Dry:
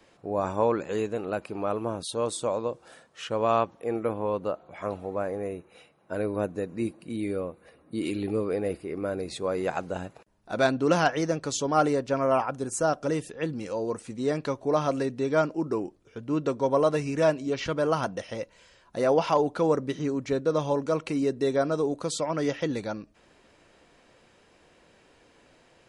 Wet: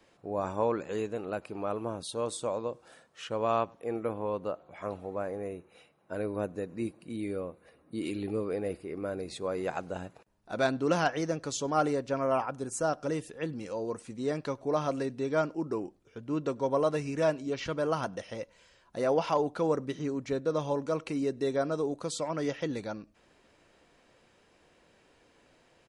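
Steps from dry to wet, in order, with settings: outdoor echo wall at 17 m, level -29 dB; gain -4.5 dB

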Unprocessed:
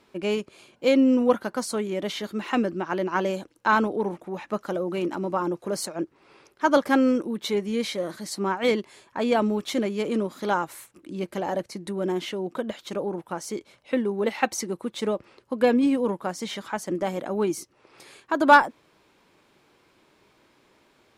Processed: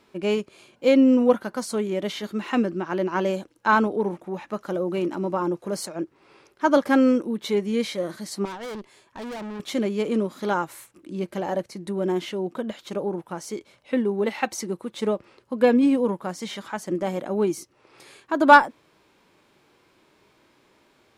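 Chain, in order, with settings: harmonic-percussive split harmonic +5 dB; 8.45–9.6 tube stage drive 30 dB, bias 0.7; gain -2.5 dB

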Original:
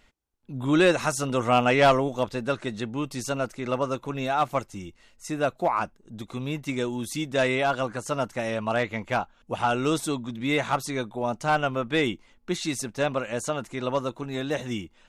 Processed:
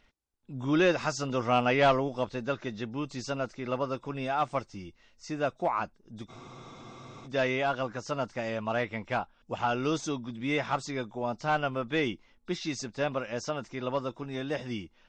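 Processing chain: nonlinear frequency compression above 3400 Hz 1.5:1; spectral freeze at 6.31, 0.94 s; gain -4.5 dB

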